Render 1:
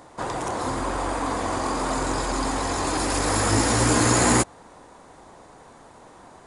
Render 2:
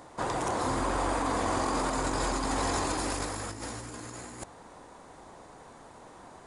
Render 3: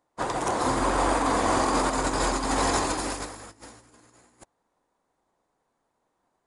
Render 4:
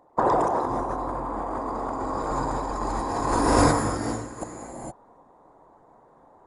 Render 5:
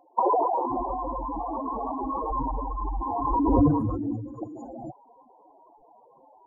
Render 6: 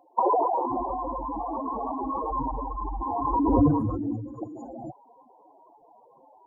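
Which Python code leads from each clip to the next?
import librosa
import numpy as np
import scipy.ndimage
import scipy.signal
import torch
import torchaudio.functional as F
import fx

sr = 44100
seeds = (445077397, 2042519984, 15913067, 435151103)

y1 = fx.over_compress(x, sr, threshold_db=-26.0, ratio=-0.5)
y1 = F.gain(torch.from_numpy(y1), -5.0).numpy()
y2 = fx.peak_eq(y1, sr, hz=86.0, db=-4.5, octaves=1.5)
y2 = fx.upward_expand(y2, sr, threshold_db=-50.0, expansion=2.5)
y2 = F.gain(torch.from_numpy(y2), 7.5).numpy()
y3 = fx.envelope_sharpen(y2, sr, power=2.0)
y3 = fx.rev_gated(y3, sr, seeds[0], gate_ms=490, shape='rising', drr_db=-2.5)
y3 = fx.over_compress(y3, sr, threshold_db=-33.0, ratio=-1.0)
y3 = F.gain(torch.from_numpy(y3), 7.0).numpy()
y4 = fx.spec_expand(y3, sr, power=3.9)
y5 = scipy.signal.sosfilt(scipy.signal.butter(2, 46.0, 'highpass', fs=sr, output='sos'), y4)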